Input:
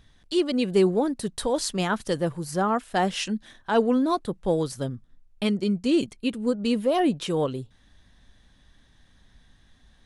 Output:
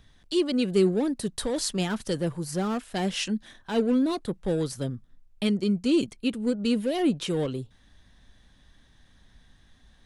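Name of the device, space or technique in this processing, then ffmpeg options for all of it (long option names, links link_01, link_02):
one-band saturation: -filter_complex "[0:a]acrossover=split=470|2100[link_01][link_02][link_03];[link_02]asoftclip=type=tanh:threshold=-36dB[link_04];[link_01][link_04][link_03]amix=inputs=3:normalize=0"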